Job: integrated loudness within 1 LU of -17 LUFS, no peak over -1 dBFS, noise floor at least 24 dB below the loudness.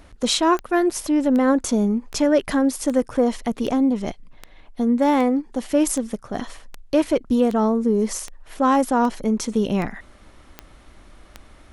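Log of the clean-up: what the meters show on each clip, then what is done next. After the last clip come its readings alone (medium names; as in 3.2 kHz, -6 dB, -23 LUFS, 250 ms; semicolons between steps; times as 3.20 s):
clicks found 15; loudness -21.0 LUFS; peak level -7.0 dBFS; loudness target -17.0 LUFS
-> de-click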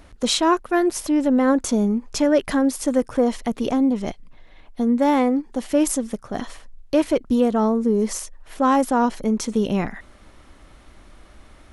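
clicks found 0; loudness -21.0 LUFS; peak level -7.0 dBFS; loudness target -17.0 LUFS
-> trim +4 dB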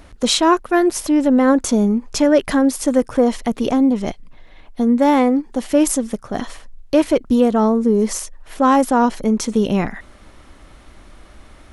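loudness -17.0 LUFS; peak level -3.0 dBFS; noise floor -45 dBFS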